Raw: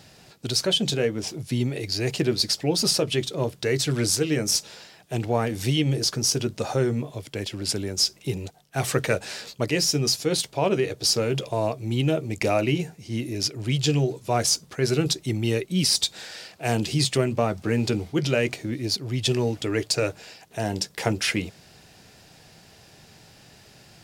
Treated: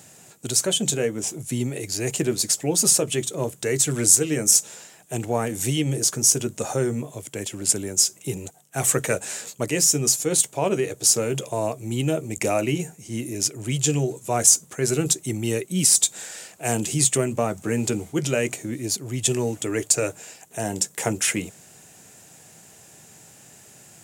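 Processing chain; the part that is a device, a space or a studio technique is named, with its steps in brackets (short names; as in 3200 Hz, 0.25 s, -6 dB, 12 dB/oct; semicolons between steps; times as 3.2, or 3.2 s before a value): budget condenser microphone (HPF 110 Hz; resonant high shelf 5900 Hz +7.5 dB, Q 3)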